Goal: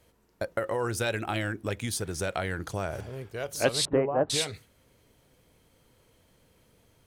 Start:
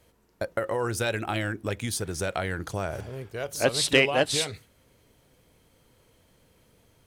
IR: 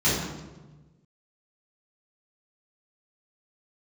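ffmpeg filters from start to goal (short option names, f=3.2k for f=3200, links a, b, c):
-filter_complex "[0:a]asettb=1/sr,asplit=3[a][b][c];[a]atrim=end=3.854[d];[b]atrim=start=3.85:end=4.3,asetpts=PTS-STARTPTS,afade=t=in:d=0.004:c=qsin,afade=t=out:st=0.446:d=0.004:c=qsin,lowpass=f=1.2k:w=0.5412,lowpass=f=1.2k:w=1.3066[e];[c]atrim=start=4.296[f];[d][e]acrossfade=d=0.004:c1=hsin:c2=qsin[g];[g][f]acrossfade=d=0.004:c1=qsin:c2=hsin,volume=-1.5dB"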